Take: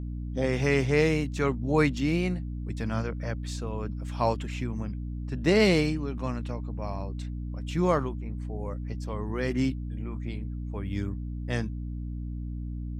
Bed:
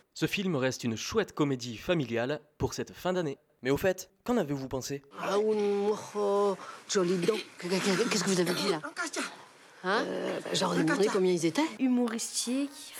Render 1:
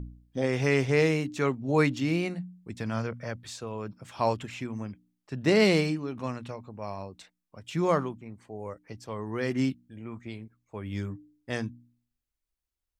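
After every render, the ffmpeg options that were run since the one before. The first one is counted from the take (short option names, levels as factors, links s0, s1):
-af "bandreject=f=60:t=h:w=4,bandreject=f=120:t=h:w=4,bandreject=f=180:t=h:w=4,bandreject=f=240:t=h:w=4,bandreject=f=300:t=h:w=4"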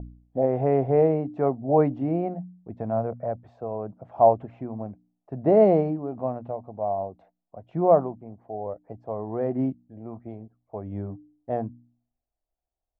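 -af "lowpass=f=700:t=q:w=6"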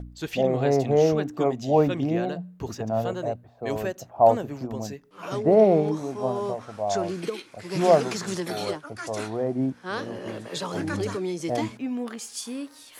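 -filter_complex "[1:a]volume=0.708[s0];[0:a][s0]amix=inputs=2:normalize=0"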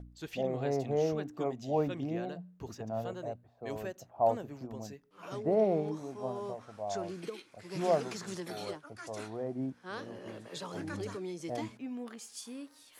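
-af "volume=0.299"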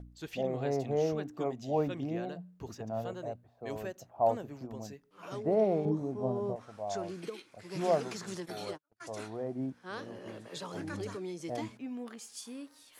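-filter_complex "[0:a]asettb=1/sr,asplit=3[s0][s1][s2];[s0]atrim=end=5.854[s3];[s1]atrim=start=5.85:end=6.56,asetpts=PTS-STARTPTS,afade=t=in:d=0.004:c=qsin,afade=t=out:st=0.706:d=0.004:c=qsin,tiltshelf=f=820:g=9.5[s4];[s2]atrim=start=6.556[s5];[s3][s4]acrossfade=d=0.004:c1=hsin:c2=qsin[s6];[s6][s5]acrossfade=d=0.004:c1=qsin:c2=hsin,asplit=3[s7][s8][s9];[s7]afade=t=out:st=8.44:d=0.02[s10];[s8]agate=range=0.0126:threshold=0.00631:ratio=16:release=100:detection=peak,afade=t=in:st=8.44:d=0.02,afade=t=out:st=9:d=0.02[s11];[s9]afade=t=in:st=9:d=0.02[s12];[s10][s11][s12]amix=inputs=3:normalize=0"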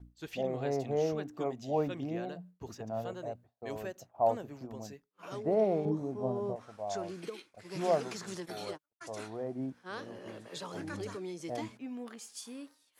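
-af "lowshelf=f=270:g=-2.5,agate=range=0.0224:threshold=0.00355:ratio=3:detection=peak"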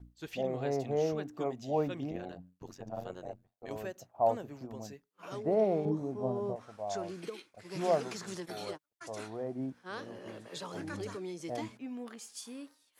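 -filter_complex "[0:a]asettb=1/sr,asplit=3[s0][s1][s2];[s0]atrim=end=2.114[s3];[s1]atrim=start=2.11:end=3.71,asetpts=PTS-STARTPTS,afade=t=in:d=0.004:c=qsin,afade=t=out:st=1.596:d=0.004:c=qsin,tremolo=f=92:d=0.889[s4];[s2]atrim=start=3.706[s5];[s3][s4]acrossfade=d=0.004:c1=hsin:c2=qsin[s6];[s6][s5]acrossfade=d=0.004:c1=qsin:c2=hsin"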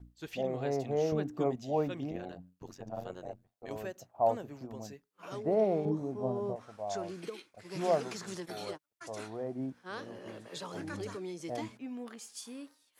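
-filter_complex "[0:a]asettb=1/sr,asplit=3[s0][s1][s2];[s0]atrim=end=1.124[s3];[s1]atrim=start=1.12:end=1.56,asetpts=PTS-STARTPTS,afade=t=in:d=0.004:c=qsin,afade=t=out:st=0.436:d=0.004:c=qsin,lowshelf=f=450:g=7.5[s4];[s2]atrim=start=1.556[s5];[s3][s4]acrossfade=d=0.004:c1=hsin:c2=qsin[s6];[s6][s5]acrossfade=d=0.004:c1=qsin:c2=hsin"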